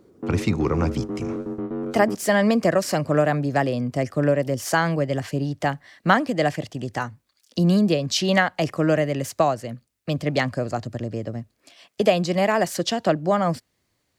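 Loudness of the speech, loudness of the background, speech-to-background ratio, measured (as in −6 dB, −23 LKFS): −23.0 LKFS, −30.5 LKFS, 7.5 dB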